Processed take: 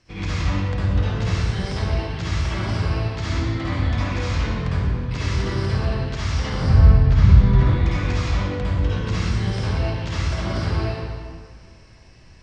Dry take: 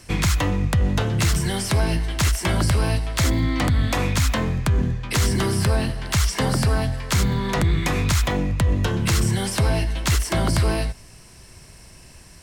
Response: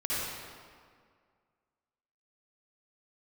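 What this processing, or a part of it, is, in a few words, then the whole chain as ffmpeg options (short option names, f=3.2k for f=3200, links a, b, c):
stairwell: -filter_complex "[0:a]lowpass=f=5.7k:w=0.5412,lowpass=f=5.7k:w=1.3066,asettb=1/sr,asplit=3[a][b][c];[a]atrim=end=6.624[d];[b]atrim=start=6.62:end=7.63,asetpts=PTS-STARTPTS,afade=t=in:d=0.004:c=qsin,afade=t=out:st=1.006:d=0.004:c=qsin,aemphasis=mode=reproduction:type=bsi[e];[c]atrim=start=7.626[f];[d][e]acrossfade=d=0.004:c1=hsin:c2=qsin[g];[g][f]acrossfade=d=0.004:c1=qsin:c2=hsin[h];[1:a]atrim=start_sample=2205[i];[h][i]afir=irnorm=-1:irlink=0,volume=-11dB"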